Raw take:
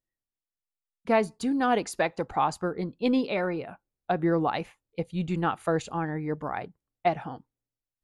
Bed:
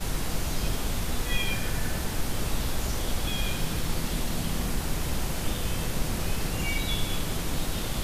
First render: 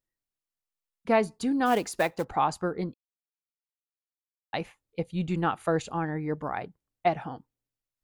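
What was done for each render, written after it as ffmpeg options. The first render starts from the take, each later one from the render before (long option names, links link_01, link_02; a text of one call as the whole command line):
ffmpeg -i in.wav -filter_complex "[0:a]asplit=3[link_01][link_02][link_03];[link_01]afade=type=out:start_time=1.65:duration=0.02[link_04];[link_02]acrusher=bits=5:mode=log:mix=0:aa=0.000001,afade=type=in:start_time=1.65:duration=0.02,afade=type=out:start_time=2.23:duration=0.02[link_05];[link_03]afade=type=in:start_time=2.23:duration=0.02[link_06];[link_04][link_05][link_06]amix=inputs=3:normalize=0,asplit=3[link_07][link_08][link_09];[link_07]atrim=end=2.94,asetpts=PTS-STARTPTS,afade=type=out:start_time=2.936:duration=0.004:curve=hsin[link_10];[link_08]atrim=start=2.94:end=4.53,asetpts=PTS-STARTPTS,volume=0[link_11];[link_09]atrim=start=4.53,asetpts=PTS-STARTPTS,afade=type=in:duration=0.004:curve=hsin[link_12];[link_10][link_11][link_12]concat=n=3:v=0:a=1" out.wav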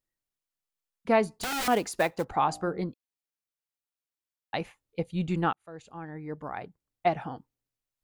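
ffmpeg -i in.wav -filter_complex "[0:a]asettb=1/sr,asplit=3[link_01][link_02][link_03];[link_01]atrim=end=1.284[link_04];[link_02]atrim=start=1.28:end=1.68,asetpts=PTS-STARTPTS,afade=type=in:duration=0.004:curve=qsin,afade=type=out:start_time=0.396:duration=0.004:curve=qsin,aeval=exprs='(mod(21.1*val(0)+1,2)-1)/21.1':channel_layout=same[link_05];[link_03]atrim=start=1.676[link_06];[link_04][link_05]acrossfade=duration=0.004:curve1=hsin:curve2=qsin[link_07];[link_07][link_06]acrossfade=duration=0.004:curve1=qsin:curve2=hsin,asettb=1/sr,asplit=3[link_08][link_09][link_10];[link_08]atrim=end=2.404[link_11];[link_09]atrim=start=2.4:end=2.81,asetpts=PTS-STARTPTS,afade=type=in:duration=0.004:curve=qsin,afade=type=out:start_time=0.406:duration=0.004:curve=qsin,bandreject=frequency=60.73:width_type=h:width=4,bandreject=frequency=121.46:width_type=h:width=4,bandreject=frequency=182.19:width_type=h:width=4,bandreject=frequency=242.92:width_type=h:width=4,bandreject=frequency=303.65:width_type=h:width=4,bandreject=frequency=364.38:width_type=h:width=4,bandreject=frequency=425.11:width_type=h:width=4,bandreject=frequency=485.84:width_type=h:width=4,bandreject=frequency=546.57:width_type=h:width=4,bandreject=frequency=607.3:width_type=h:width=4,bandreject=frequency=668.03:width_type=h:width=4,bandreject=frequency=728.76:width_type=h:width=4,bandreject=frequency=789.49:width_type=h:width=4[link_12];[link_10]atrim=start=2.806[link_13];[link_11][link_12]acrossfade=duration=0.004:curve1=hsin:curve2=qsin[link_14];[link_14][link_13]acrossfade=duration=0.004:curve1=qsin:curve2=hsin,asplit=2[link_15][link_16];[link_15]atrim=end=5.53,asetpts=PTS-STARTPTS,afade=type=out:start_time=5.526:duration=0.004:curve=hsin[link_17];[link_16]atrim=start=5.53,asetpts=PTS-STARTPTS,afade=type=in:duration=1.65[link_18];[link_17][link_18]concat=n=2:v=0:a=1" out.wav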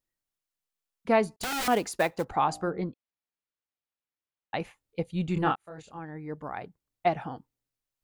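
ffmpeg -i in.wav -filter_complex "[0:a]asettb=1/sr,asplit=3[link_01][link_02][link_03];[link_01]atrim=end=1.364[link_04];[link_02]atrim=start=1.36:end=2.05,asetpts=PTS-STARTPTS,afade=type=in:duration=0.004:curve=qsin,afade=type=out:start_time=0.686:duration=0.004:curve=qsin,agate=range=-33dB:threshold=-45dB:ratio=3:release=100:detection=peak[link_05];[link_03]atrim=start=2.046[link_06];[link_04][link_05]acrossfade=duration=0.004:curve1=hsin:curve2=qsin[link_07];[link_07][link_06]acrossfade=duration=0.004:curve1=qsin:curve2=hsin,asettb=1/sr,asplit=3[link_08][link_09][link_10];[link_08]atrim=end=2.704[link_11];[link_09]atrim=start=2.7:end=4.6,asetpts=PTS-STARTPTS,afade=type=in:duration=0.004:curve=qsin,afade=type=out:start_time=1.896:duration=0.004:curve=qsin,lowpass=3500[link_12];[link_10]atrim=start=4.596[link_13];[link_11][link_12]acrossfade=duration=0.004:curve1=hsin:curve2=qsin[link_14];[link_14][link_13]acrossfade=duration=0.004:curve1=qsin:curve2=hsin,asettb=1/sr,asplit=3[link_15][link_16][link_17];[link_15]atrim=end=5.344[link_18];[link_16]atrim=start=5.34:end=5.99,asetpts=PTS-STARTPTS,afade=type=in:duration=0.004:curve=qsin,afade=type=out:start_time=0.646:duration=0.004:curve=qsin,asplit=2[link_19][link_20];[link_20]adelay=26,volume=-3dB[link_21];[link_19][link_21]amix=inputs=2:normalize=0,atrim=end_sample=28665[link_22];[link_17]atrim=start=5.986[link_23];[link_18][link_22]acrossfade=duration=0.004:curve1=hsin:curve2=qsin[link_24];[link_24][link_23]acrossfade=duration=0.004:curve1=qsin:curve2=hsin" out.wav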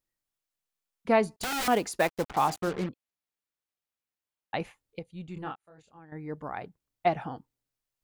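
ffmpeg -i in.wav -filter_complex "[0:a]asettb=1/sr,asplit=3[link_01][link_02][link_03];[link_01]atrim=end=2.004[link_04];[link_02]atrim=start=2:end=2.89,asetpts=PTS-STARTPTS,afade=type=in:duration=0.004:curve=qsin,afade=type=out:start_time=0.886:duration=0.004:curve=qsin,acrusher=bits=5:mix=0:aa=0.5[link_05];[link_03]atrim=start=2.886[link_06];[link_04][link_05]acrossfade=duration=0.004:curve1=hsin:curve2=qsin[link_07];[link_07][link_06]acrossfade=duration=0.004:curve1=qsin:curve2=hsin,asplit=3[link_08][link_09][link_10];[link_08]atrim=end=4.992[link_11];[link_09]atrim=start=4.988:end=6.122,asetpts=PTS-STARTPTS,volume=-11.5dB[link_12];[link_10]atrim=start=6.118[link_13];[link_11][link_12]acrossfade=duration=0.004:curve1=hsin:curve2=hsin[link_14];[link_14][link_13]acrossfade=duration=0.004:curve1=hsin:curve2=hsin" out.wav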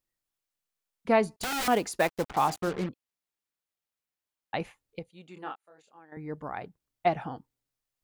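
ffmpeg -i in.wav -filter_complex "[0:a]asettb=1/sr,asplit=3[link_01][link_02][link_03];[link_01]atrim=end=5.094[link_04];[link_02]atrim=start=5.09:end=6.17,asetpts=PTS-STARTPTS,afade=type=in:duration=0.004:curve=qsin,afade=type=out:start_time=1.076:duration=0.004:curve=qsin,highpass=340[link_05];[link_03]atrim=start=6.166[link_06];[link_04][link_05]acrossfade=duration=0.004:curve1=hsin:curve2=qsin[link_07];[link_07][link_06]acrossfade=duration=0.004:curve1=qsin:curve2=hsin" out.wav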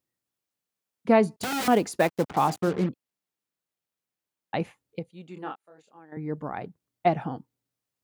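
ffmpeg -i in.wav -af "highpass=120,lowshelf=frequency=450:gain=9" out.wav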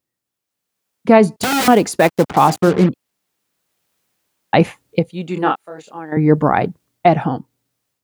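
ffmpeg -i in.wav -af "dynaudnorm=framelen=440:gausssize=3:maxgain=17dB,alimiter=level_in=4dB:limit=-1dB:release=50:level=0:latency=1" out.wav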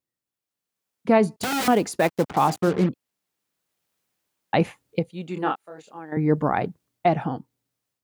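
ffmpeg -i in.wav -af "volume=-8dB" out.wav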